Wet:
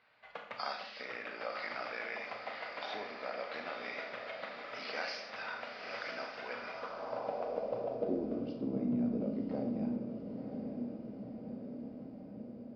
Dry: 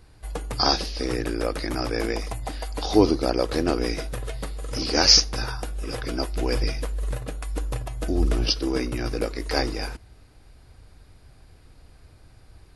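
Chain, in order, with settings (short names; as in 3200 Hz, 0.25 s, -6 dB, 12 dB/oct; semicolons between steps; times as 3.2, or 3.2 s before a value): compressor 5:1, threshold -25 dBFS, peak gain reduction 13.5 dB; speaker cabinet 110–4400 Hz, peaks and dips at 210 Hz +9 dB, 330 Hz -10 dB, 600 Hz +8 dB, 1700 Hz -8 dB; diffused feedback echo 0.975 s, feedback 68%, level -7 dB; band-pass sweep 1800 Hz -> 220 Hz, 6.41–8.7; Schroeder reverb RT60 0.64 s, combs from 26 ms, DRR 4 dB; gain +2 dB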